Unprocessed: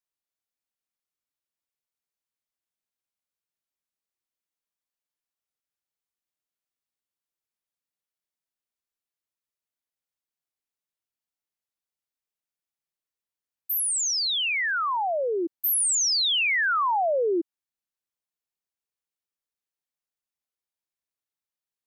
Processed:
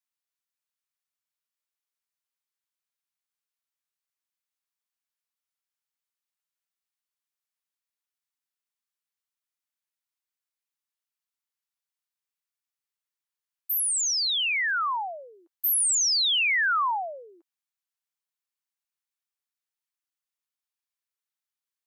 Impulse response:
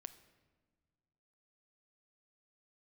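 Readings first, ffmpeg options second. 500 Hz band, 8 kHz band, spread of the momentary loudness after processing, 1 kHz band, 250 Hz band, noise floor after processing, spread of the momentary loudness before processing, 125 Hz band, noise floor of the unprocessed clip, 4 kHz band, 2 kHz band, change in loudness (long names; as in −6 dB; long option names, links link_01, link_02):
−16.5 dB, 0.0 dB, 11 LU, −2.0 dB, below −30 dB, below −85 dBFS, 7 LU, can't be measured, below −85 dBFS, 0.0 dB, 0.0 dB, 0.0 dB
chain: -af "highpass=frequency=900:width=0.5412,highpass=frequency=900:width=1.3066"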